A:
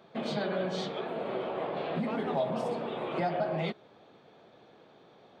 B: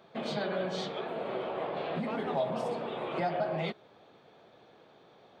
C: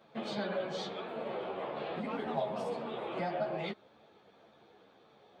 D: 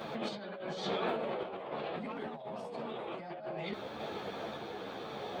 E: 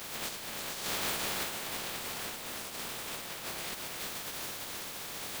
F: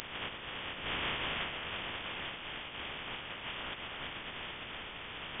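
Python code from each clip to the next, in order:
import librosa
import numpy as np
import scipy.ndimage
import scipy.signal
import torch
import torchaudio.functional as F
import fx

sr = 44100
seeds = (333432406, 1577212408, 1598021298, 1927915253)

y1 = fx.peak_eq(x, sr, hz=230.0, db=-3.0, octaves=1.6)
y2 = fx.ensemble(y1, sr)
y3 = fx.over_compress(y2, sr, threshold_db=-48.0, ratio=-1.0)
y3 = fx.tremolo_random(y3, sr, seeds[0], hz=3.5, depth_pct=55)
y3 = y3 * 10.0 ** (11.5 / 20.0)
y4 = fx.spec_flatten(y3, sr, power=0.16)
y4 = y4 + 10.0 ** (-4.0 / 20.0) * np.pad(y4, (int(335 * sr / 1000.0), 0))[:len(y4)]
y5 = fx.freq_invert(y4, sr, carrier_hz=3500)
y5 = y5 * 10.0 ** (1.0 / 20.0)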